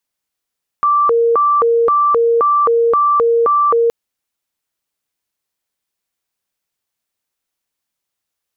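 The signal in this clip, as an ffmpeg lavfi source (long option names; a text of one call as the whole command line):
ffmpeg -f lavfi -i "aevalsrc='0.335*sin(2*PI*(817.5*t+352.5/1.9*(0.5-abs(mod(1.9*t,1)-0.5))))':duration=3.07:sample_rate=44100" out.wav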